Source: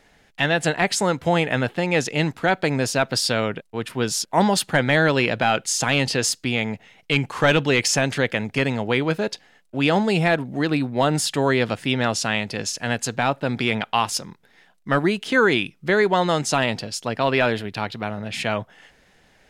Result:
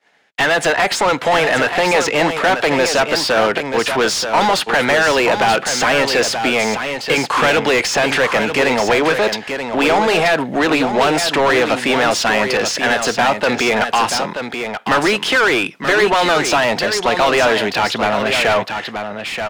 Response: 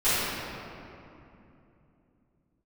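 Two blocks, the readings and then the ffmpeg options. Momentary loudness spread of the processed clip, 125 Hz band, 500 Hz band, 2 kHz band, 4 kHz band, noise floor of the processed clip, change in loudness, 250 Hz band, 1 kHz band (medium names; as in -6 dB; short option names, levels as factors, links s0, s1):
5 LU, -4.5 dB, +7.0 dB, +8.0 dB, +7.0 dB, -30 dBFS, +6.5 dB, +2.5 dB, +8.5 dB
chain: -filter_complex "[0:a]highpass=f=160:p=1,agate=range=0.0224:threshold=0.00562:ratio=3:detection=peak,acrossover=split=340|1900|5400[s0][s1][s2][s3];[s0]acompressor=threshold=0.0224:ratio=4[s4];[s1]acompressor=threshold=0.0794:ratio=4[s5];[s2]acompressor=threshold=0.0251:ratio=4[s6];[s3]acompressor=threshold=0.0141:ratio=4[s7];[s4][s5][s6][s7]amix=inputs=4:normalize=0,asplit=2[s8][s9];[s9]highpass=f=720:p=1,volume=20,asoftclip=type=tanh:threshold=0.376[s10];[s8][s10]amix=inputs=2:normalize=0,lowpass=f=3000:p=1,volume=0.501,asplit=2[s11][s12];[s12]aecho=0:1:931:0.422[s13];[s11][s13]amix=inputs=2:normalize=0,volume=1.33"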